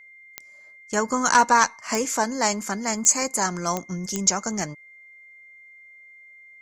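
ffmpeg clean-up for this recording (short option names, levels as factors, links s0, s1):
-af "adeclick=t=4,bandreject=f=2100:w=30"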